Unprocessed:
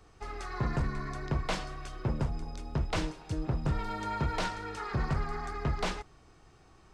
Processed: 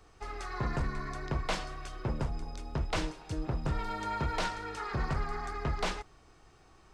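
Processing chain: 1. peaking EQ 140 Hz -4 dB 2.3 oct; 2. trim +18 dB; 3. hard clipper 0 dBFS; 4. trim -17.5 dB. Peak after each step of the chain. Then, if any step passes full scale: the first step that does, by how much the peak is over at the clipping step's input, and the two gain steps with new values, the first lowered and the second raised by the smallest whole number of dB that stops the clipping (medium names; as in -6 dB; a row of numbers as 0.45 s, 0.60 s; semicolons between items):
-21.5 dBFS, -3.5 dBFS, -3.5 dBFS, -21.0 dBFS; nothing clips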